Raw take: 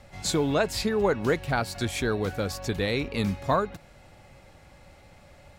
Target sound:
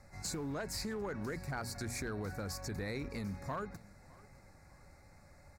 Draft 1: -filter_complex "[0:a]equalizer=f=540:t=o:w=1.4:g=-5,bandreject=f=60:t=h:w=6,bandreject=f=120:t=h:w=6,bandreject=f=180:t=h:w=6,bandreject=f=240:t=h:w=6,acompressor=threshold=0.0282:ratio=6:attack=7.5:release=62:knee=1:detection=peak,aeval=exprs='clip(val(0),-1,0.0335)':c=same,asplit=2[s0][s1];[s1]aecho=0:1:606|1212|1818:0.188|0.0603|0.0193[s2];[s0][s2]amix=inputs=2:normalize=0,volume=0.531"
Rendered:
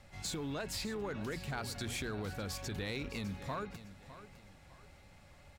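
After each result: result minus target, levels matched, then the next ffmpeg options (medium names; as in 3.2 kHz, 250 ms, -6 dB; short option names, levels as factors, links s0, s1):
echo-to-direct +9 dB; 4 kHz band +3.5 dB
-filter_complex "[0:a]equalizer=f=540:t=o:w=1.4:g=-5,bandreject=f=60:t=h:w=6,bandreject=f=120:t=h:w=6,bandreject=f=180:t=h:w=6,bandreject=f=240:t=h:w=6,acompressor=threshold=0.0282:ratio=6:attack=7.5:release=62:knee=1:detection=peak,aeval=exprs='clip(val(0),-1,0.0335)':c=same,asplit=2[s0][s1];[s1]aecho=0:1:606|1212:0.0668|0.0214[s2];[s0][s2]amix=inputs=2:normalize=0,volume=0.531"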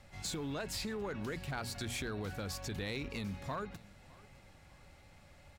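4 kHz band +3.5 dB
-filter_complex "[0:a]asuperstop=centerf=3100:order=4:qfactor=1.4,equalizer=f=540:t=o:w=1.4:g=-5,bandreject=f=60:t=h:w=6,bandreject=f=120:t=h:w=6,bandreject=f=180:t=h:w=6,bandreject=f=240:t=h:w=6,acompressor=threshold=0.0282:ratio=6:attack=7.5:release=62:knee=1:detection=peak,aeval=exprs='clip(val(0),-1,0.0335)':c=same,asplit=2[s0][s1];[s1]aecho=0:1:606|1212:0.0668|0.0214[s2];[s0][s2]amix=inputs=2:normalize=0,volume=0.531"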